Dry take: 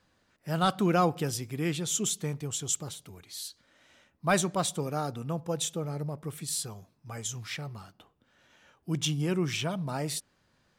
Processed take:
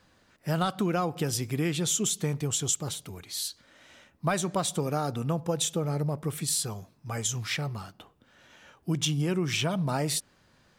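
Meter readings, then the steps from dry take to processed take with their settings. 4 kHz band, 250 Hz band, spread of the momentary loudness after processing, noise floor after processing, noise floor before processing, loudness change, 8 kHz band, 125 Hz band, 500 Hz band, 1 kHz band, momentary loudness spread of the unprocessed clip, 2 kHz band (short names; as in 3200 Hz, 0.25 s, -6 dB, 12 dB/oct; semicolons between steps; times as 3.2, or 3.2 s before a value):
+3.0 dB, +1.5 dB, 9 LU, -64 dBFS, -70 dBFS, +1.5 dB, +3.0 dB, +3.0 dB, +1.0 dB, -1.0 dB, 15 LU, +0.5 dB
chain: compressor 10:1, threshold -30 dBFS, peak gain reduction 11 dB; gain +6.5 dB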